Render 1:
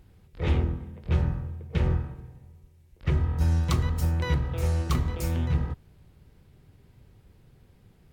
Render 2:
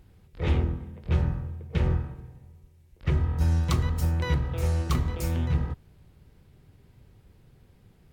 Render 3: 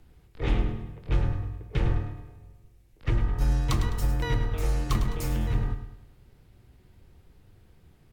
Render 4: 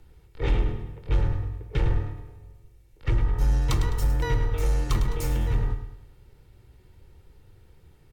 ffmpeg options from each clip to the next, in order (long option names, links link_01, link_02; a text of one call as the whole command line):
ffmpeg -i in.wav -af anull out.wav
ffmpeg -i in.wav -af "afreqshift=-31,aecho=1:1:104|208|312|416|520:0.316|0.136|0.0585|0.0251|0.0108" out.wav
ffmpeg -i in.wav -filter_complex "[0:a]aecho=1:1:2.2:0.39,asplit=2[link_01][link_02];[link_02]aeval=exprs='0.1*(abs(mod(val(0)/0.1+3,4)-2)-1)':channel_layout=same,volume=-12dB[link_03];[link_01][link_03]amix=inputs=2:normalize=0,volume=-1dB" out.wav